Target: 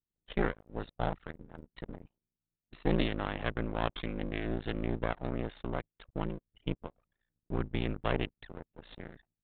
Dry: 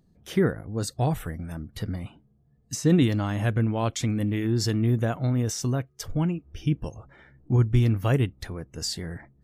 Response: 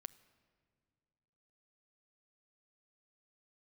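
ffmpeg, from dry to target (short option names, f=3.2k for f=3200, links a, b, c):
-af "highpass=f=440:p=1,anlmdn=1,aresample=8000,aeval=exprs='max(val(0),0)':c=same,aresample=44100,aeval=exprs='val(0)*sin(2*PI*28*n/s)':c=same,volume=2.5dB"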